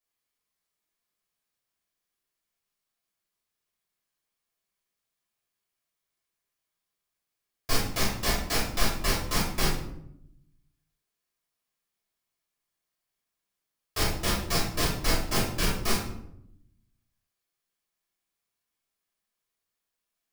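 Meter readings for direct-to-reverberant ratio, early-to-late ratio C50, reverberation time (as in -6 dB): -7.5 dB, 3.0 dB, 0.80 s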